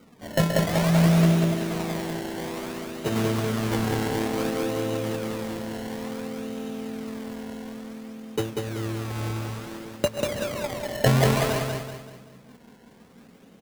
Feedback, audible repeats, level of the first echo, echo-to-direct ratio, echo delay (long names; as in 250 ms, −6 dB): 41%, 5, −3.5 dB, −2.5 dB, 191 ms